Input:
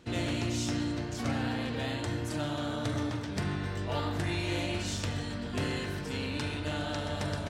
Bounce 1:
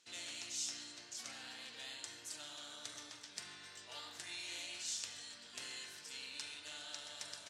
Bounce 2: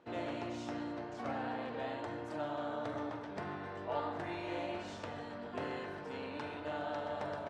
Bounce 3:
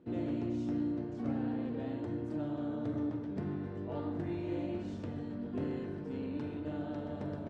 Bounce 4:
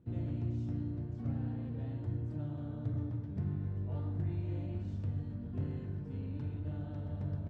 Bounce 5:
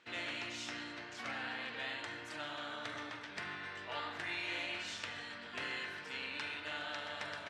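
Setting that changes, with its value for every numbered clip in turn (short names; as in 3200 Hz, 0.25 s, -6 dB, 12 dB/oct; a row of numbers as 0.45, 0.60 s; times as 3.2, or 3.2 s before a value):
band-pass, frequency: 7000, 760, 290, 110, 2000 Hz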